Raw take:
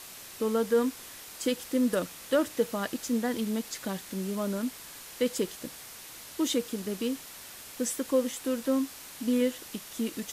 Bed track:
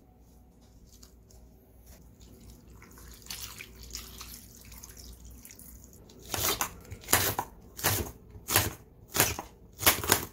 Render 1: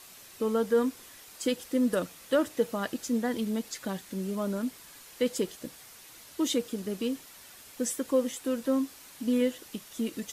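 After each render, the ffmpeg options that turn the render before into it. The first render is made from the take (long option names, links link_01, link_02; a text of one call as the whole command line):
ffmpeg -i in.wav -af "afftdn=noise_reduction=6:noise_floor=-46" out.wav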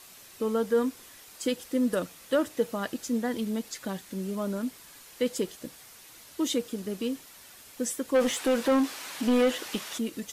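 ffmpeg -i in.wav -filter_complex "[0:a]asplit=3[link_01][link_02][link_03];[link_01]afade=type=out:start_time=8.14:duration=0.02[link_04];[link_02]asplit=2[link_05][link_06];[link_06]highpass=frequency=720:poles=1,volume=22dB,asoftclip=type=tanh:threshold=-15dB[link_07];[link_05][link_07]amix=inputs=2:normalize=0,lowpass=frequency=3200:poles=1,volume=-6dB,afade=type=in:start_time=8.14:duration=0.02,afade=type=out:start_time=9.97:duration=0.02[link_08];[link_03]afade=type=in:start_time=9.97:duration=0.02[link_09];[link_04][link_08][link_09]amix=inputs=3:normalize=0" out.wav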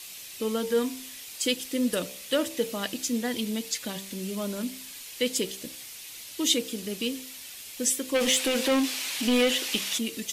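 ffmpeg -i in.wav -af "highshelf=frequency=1900:width_type=q:width=1.5:gain=8,bandreject=frequency=64.82:width_type=h:width=4,bandreject=frequency=129.64:width_type=h:width=4,bandreject=frequency=194.46:width_type=h:width=4,bandreject=frequency=259.28:width_type=h:width=4,bandreject=frequency=324.1:width_type=h:width=4,bandreject=frequency=388.92:width_type=h:width=4,bandreject=frequency=453.74:width_type=h:width=4,bandreject=frequency=518.56:width_type=h:width=4,bandreject=frequency=583.38:width_type=h:width=4,bandreject=frequency=648.2:width_type=h:width=4,bandreject=frequency=713.02:width_type=h:width=4,bandreject=frequency=777.84:width_type=h:width=4,bandreject=frequency=842.66:width_type=h:width=4,bandreject=frequency=907.48:width_type=h:width=4,bandreject=frequency=972.3:width_type=h:width=4,bandreject=frequency=1037.12:width_type=h:width=4,bandreject=frequency=1101.94:width_type=h:width=4,bandreject=frequency=1166.76:width_type=h:width=4" out.wav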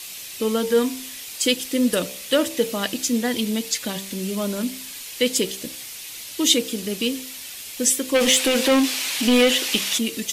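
ffmpeg -i in.wav -af "volume=6.5dB" out.wav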